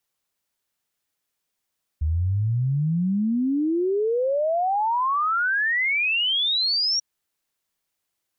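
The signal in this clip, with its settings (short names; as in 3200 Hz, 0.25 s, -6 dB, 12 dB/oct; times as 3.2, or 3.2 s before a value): log sweep 74 Hz -> 5700 Hz 4.99 s -19.5 dBFS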